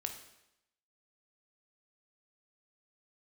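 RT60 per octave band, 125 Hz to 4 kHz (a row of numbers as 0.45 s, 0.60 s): 0.80 s, 0.85 s, 0.85 s, 0.85 s, 0.85 s, 0.80 s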